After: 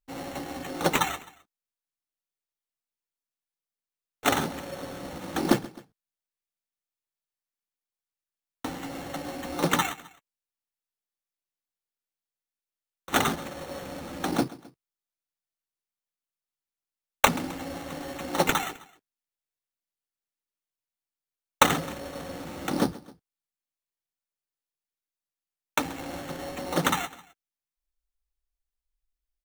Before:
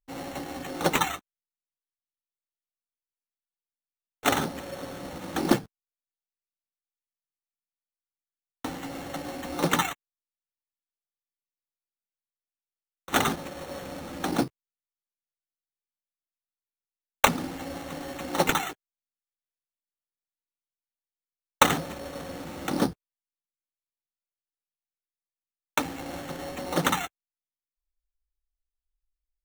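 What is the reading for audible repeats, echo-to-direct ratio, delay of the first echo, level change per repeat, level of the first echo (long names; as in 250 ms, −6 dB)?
2, −18.5 dB, 131 ms, −5.0 dB, −19.5 dB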